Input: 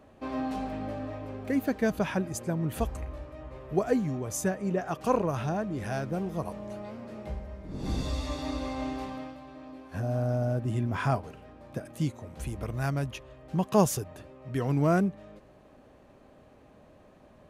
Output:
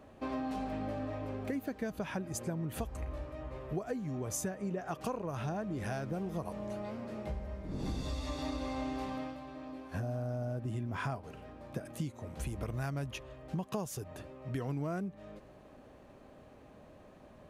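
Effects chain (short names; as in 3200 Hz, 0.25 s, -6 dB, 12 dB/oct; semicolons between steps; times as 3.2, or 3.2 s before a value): compressor 12:1, threshold -33 dBFS, peak gain reduction 17.5 dB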